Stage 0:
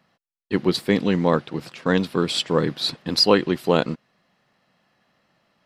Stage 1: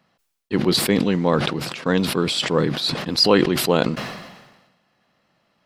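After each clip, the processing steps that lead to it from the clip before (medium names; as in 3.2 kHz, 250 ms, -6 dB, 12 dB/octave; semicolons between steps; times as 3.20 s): peaking EQ 1.8 kHz -2 dB 0.23 oct; decay stretcher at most 48 dB/s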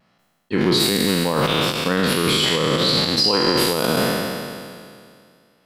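spectral sustain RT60 2.21 s; peak limiter -8 dBFS, peak gain reduction 10.5 dB; vibrato 0.76 Hz 23 cents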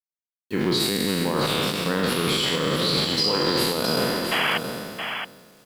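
bit crusher 7-bit; painted sound noise, 4.31–4.58 s, 600–3400 Hz -18 dBFS; on a send: delay 671 ms -7 dB; on the sum: trim -5 dB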